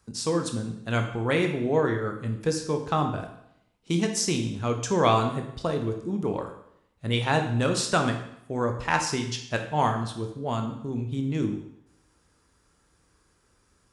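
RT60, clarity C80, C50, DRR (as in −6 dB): 0.75 s, 10.5 dB, 7.5 dB, 4.0 dB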